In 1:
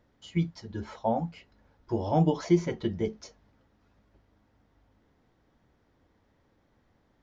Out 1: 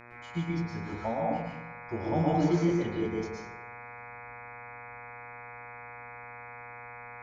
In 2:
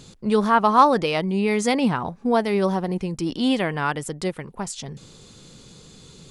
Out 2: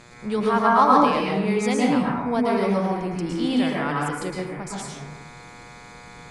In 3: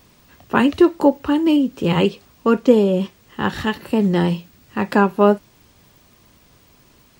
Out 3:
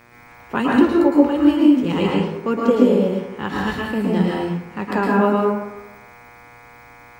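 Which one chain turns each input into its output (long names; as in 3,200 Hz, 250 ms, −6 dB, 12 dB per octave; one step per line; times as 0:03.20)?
hum with harmonics 120 Hz, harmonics 21, −45 dBFS −1 dB per octave
dense smooth reverb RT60 0.96 s, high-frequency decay 0.5×, pre-delay 100 ms, DRR −3.5 dB
level −6 dB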